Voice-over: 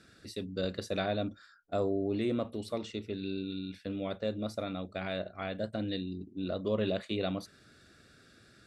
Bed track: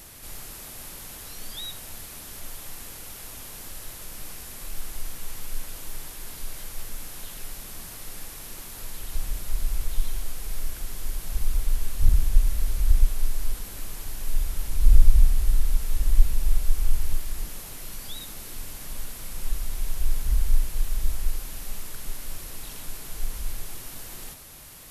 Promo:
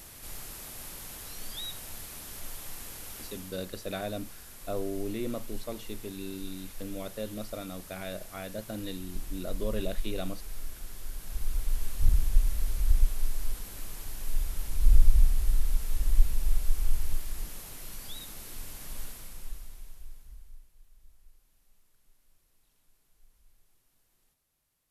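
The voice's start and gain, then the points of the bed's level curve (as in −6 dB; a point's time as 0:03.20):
2.95 s, −3.0 dB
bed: 0:03.21 −2.5 dB
0:03.63 −8.5 dB
0:11.10 −8.5 dB
0:11.83 −4.5 dB
0:19.06 −4.5 dB
0:20.73 −32.5 dB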